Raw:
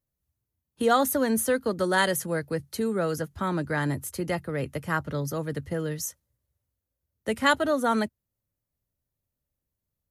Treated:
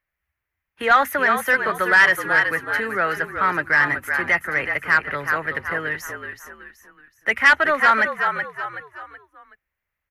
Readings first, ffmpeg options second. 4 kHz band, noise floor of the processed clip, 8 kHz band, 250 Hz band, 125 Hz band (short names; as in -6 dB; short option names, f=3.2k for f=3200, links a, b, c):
+3.5 dB, -82 dBFS, -5.0 dB, -5.5 dB, -6.5 dB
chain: -filter_complex "[0:a]equalizer=f=125:t=o:w=1:g=-11,equalizer=f=250:t=o:w=1:g=-11,equalizer=f=500:t=o:w=1:g=-9,equalizer=f=1k:t=o:w=1:g=-4,equalizer=f=2k:t=o:w=1:g=12,equalizer=f=4k:t=o:w=1:g=-10,equalizer=f=8k:t=o:w=1:g=-12,acontrast=80,asplit=2[a][b];[b]asplit=4[c][d][e][f];[c]adelay=375,afreqshift=-48,volume=-8dB[g];[d]adelay=750,afreqshift=-96,volume=-16.4dB[h];[e]adelay=1125,afreqshift=-144,volume=-24.8dB[i];[f]adelay=1500,afreqshift=-192,volume=-33.2dB[j];[g][h][i][j]amix=inputs=4:normalize=0[k];[a][k]amix=inputs=2:normalize=0,asplit=2[l][m];[m]highpass=f=720:p=1,volume=14dB,asoftclip=type=tanh:threshold=-3dB[n];[l][n]amix=inputs=2:normalize=0,lowpass=f=1.8k:p=1,volume=-6dB"